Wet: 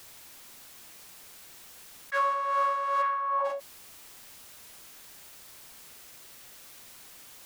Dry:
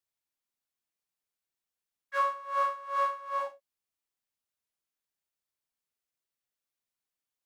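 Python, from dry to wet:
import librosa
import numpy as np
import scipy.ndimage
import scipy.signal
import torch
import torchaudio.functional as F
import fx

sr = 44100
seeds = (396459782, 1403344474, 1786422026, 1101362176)

y = fx.bandpass_q(x, sr, hz=fx.line((3.01, 1900.0), (3.44, 750.0)), q=1.4, at=(3.01, 3.44), fade=0.02)
y = fx.env_flatten(y, sr, amount_pct=70)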